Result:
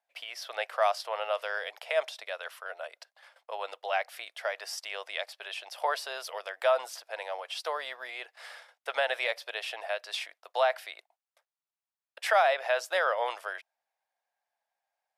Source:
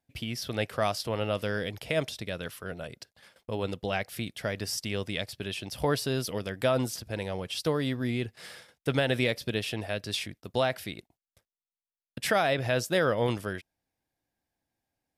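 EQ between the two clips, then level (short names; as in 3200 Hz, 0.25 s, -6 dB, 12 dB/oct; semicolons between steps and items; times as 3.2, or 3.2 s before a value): steep high-pass 630 Hz 36 dB/oct; high shelf 2200 Hz -11.5 dB; high shelf 11000 Hz -5.5 dB; +6.0 dB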